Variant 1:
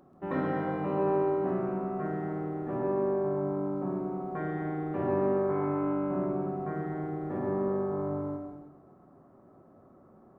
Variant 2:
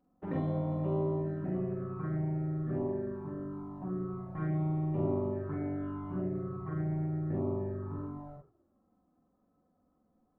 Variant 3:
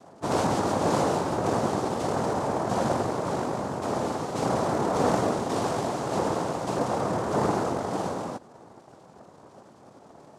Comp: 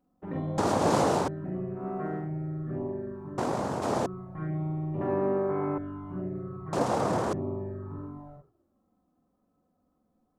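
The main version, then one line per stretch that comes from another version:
2
0:00.58–0:01.28: punch in from 3
0:01.80–0:02.24: punch in from 1, crossfade 0.16 s
0:03.38–0:04.06: punch in from 3
0:05.01–0:05.78: punch in from 1
0:06.73–0:07.33: punch in from 3

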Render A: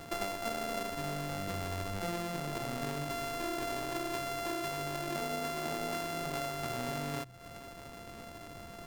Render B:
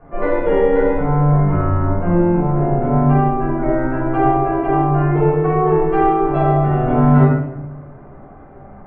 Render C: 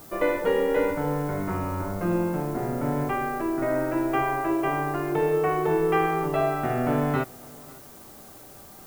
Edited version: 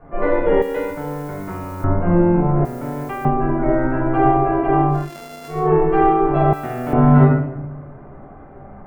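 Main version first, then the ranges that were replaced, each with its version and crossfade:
B
0:00.62–0:01.84: punch in from C
0:02.65–0:03.25: punch in from C
0:04.99–0:05.59: punch in from A, crossfade 0.24 s
0:06.53–0:06.93: punch in from C

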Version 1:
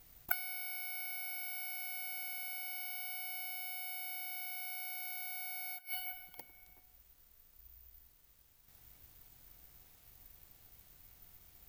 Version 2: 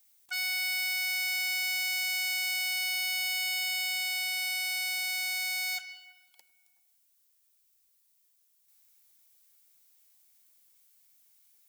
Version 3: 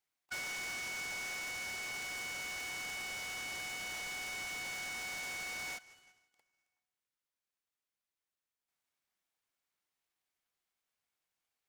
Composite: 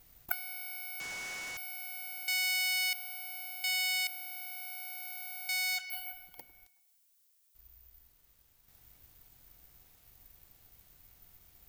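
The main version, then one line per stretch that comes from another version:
1
0:01.00–0:01.57: punch in from 3
0:02.28–0:02.93: punch in from 2
0:03.64–0:04.07: punch in from 2
0:05.49–0:05.90: punch in from 2
0:06.67–0:07.55: punch in from 2

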